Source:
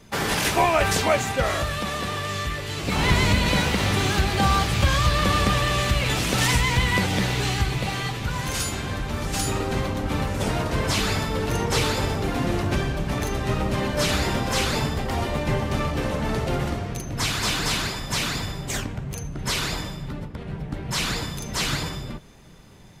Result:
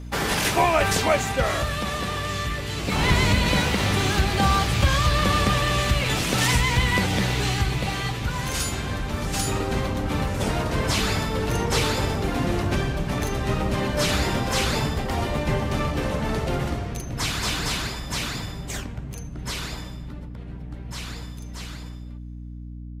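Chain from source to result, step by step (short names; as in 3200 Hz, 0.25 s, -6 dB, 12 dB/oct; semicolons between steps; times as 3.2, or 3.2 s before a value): ending faded out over 6.90 s; hum 60 Hz, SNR 12 dB; short-mantissa float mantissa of 8-bit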